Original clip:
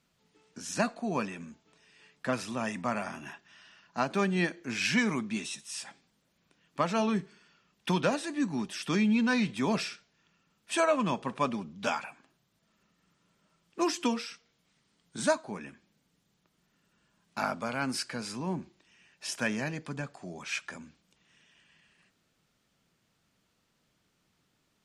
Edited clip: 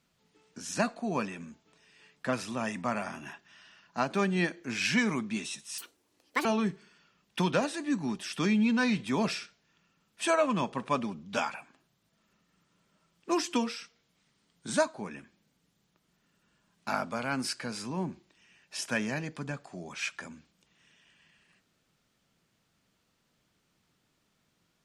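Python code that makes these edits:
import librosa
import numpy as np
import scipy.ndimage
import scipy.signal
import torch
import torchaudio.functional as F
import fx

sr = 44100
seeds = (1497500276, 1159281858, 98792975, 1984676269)

y = fx.edit(x, sr, fx.speed_span(start_s=5.78, length_s=1.17, speed=1.74), tone=tone)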